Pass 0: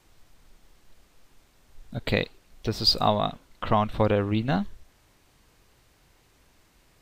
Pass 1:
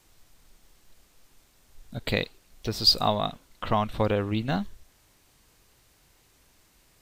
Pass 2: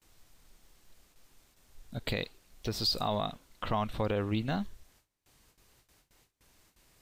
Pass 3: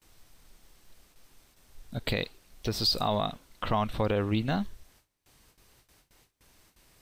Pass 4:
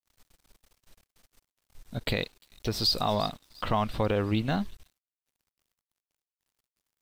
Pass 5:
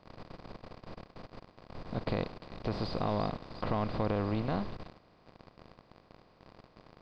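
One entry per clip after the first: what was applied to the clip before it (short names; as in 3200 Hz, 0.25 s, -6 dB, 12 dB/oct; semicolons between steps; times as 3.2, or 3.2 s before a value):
high shelf 4500 Hz +8 dB; gain -2.5 dB
gate with hold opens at -51 dBFS; limiter -17.5 dBFS, peak gain reduction 9 dB; gain -3 dB
notch 7000 Hz, Q 17; gain +3.5 dB
thin delay 0.349 s, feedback 48%, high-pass 5000 Hz, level -14 dB; crossover distortion -54 dBFS; gain +1 dB
per-bin compression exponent 0.4; tape spacing loss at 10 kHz 34 dB; gain -7 dB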